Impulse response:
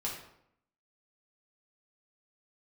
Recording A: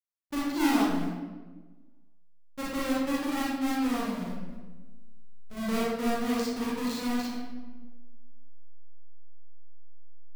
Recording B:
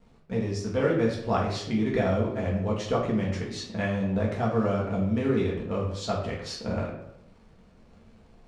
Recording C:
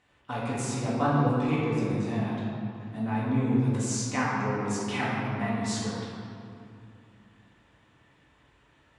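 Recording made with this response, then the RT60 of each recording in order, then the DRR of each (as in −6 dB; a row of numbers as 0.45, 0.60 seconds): B; 1.3, 0.75, 2.6 seconds; −7.5, −4.0, −8.0 decibels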